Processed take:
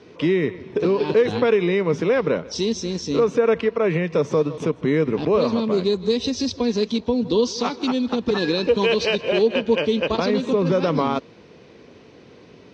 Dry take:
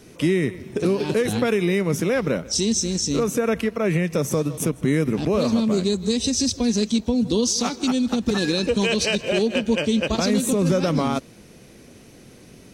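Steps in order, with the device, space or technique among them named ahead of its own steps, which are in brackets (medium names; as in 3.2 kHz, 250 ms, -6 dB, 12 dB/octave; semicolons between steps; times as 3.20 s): 10.17–10.72 s: low-pass 5.9 kHz 12 dB/octave; guitar cabinet (cabinet simulation 89–4600 Hz, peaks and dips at 130 Hz -4 dB, 210 Hz -4 dB, 450 Hz +6 dB, 1 kHz +7 dB)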